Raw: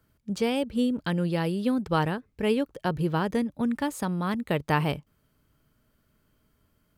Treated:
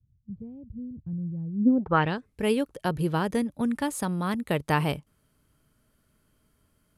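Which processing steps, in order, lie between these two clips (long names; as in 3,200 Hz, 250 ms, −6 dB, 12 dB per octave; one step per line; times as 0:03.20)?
low-pass filter sweep 110 Hz → 11,000 Hz, 0:01.52–0:02.26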